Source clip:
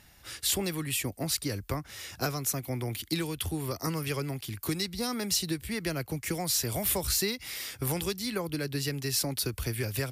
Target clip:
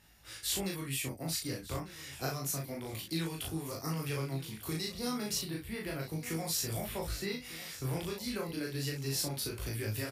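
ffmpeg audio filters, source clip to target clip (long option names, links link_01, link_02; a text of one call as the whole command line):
ffmpeg -i in.wav -filter_complex "[0:a]asettb=1/sr,asplit=3[link_01][link_02][link_03];[link_01]atrim=end=5.354[link_04];[link_02]atrim=start=5.35:end=6.08,asetpts=PTS-STARTPTS,afade=type=in:duration=0.004:curve=qsin,afade=type=out:start_time=0.726:duration=0.004:curve=qsin,equalizer=frequency=6500:width_type=o:width=0.76:gain=-13.5[link_05];[link_03]atrim=start=6.076[link_06];[link_04][link_05]acrossfade=duration=0.004:curve1=hsin:curve2=qsin[link_07];[link_07][link_06]acrossfade=duration=0.004:curve1=qsin:curve2=hsin,asettb=1/sr,asplit=3[link_08][link_09][link_10];[link_08]atrim=end=6.844[link_11];[link_09]atrim=start=6.84:end=8.13,asetpts=PTS-STARTPTS,afade=type=in:duration=0.004:curve=qsin,afade=type=out:start_time=1.286:duration=0.004:curve=qsin,acrossover=split=3400[link_12][link_13];[link_13]acompressor=threshold=-39dB:ratio=4:attack=1:release=60[link_14];[link_12][link_14]amix=inputs=2:normalize=0[link_15];[link_10]atrim=start=8.126[link_16];[link_11][link_15]acrossfade=duration=0.004:curve1=hsin:curve2=qsin[link_17];[link_17][link_16]acrossfade=duration=0.004:curve1=qsin:curve2=hsin,flanger=delay=18:depth=6.3:speed=0.3,asplit=2[link_18][link_19];[link_19]adelay=37,volume=-2.5dB[link_20];[link_18][link_20]amix=inputs=2:normalize=0,aecho=1:1:1197|2394|3591:0.158|0.0571|0.0205,volume=-4dB" out.wav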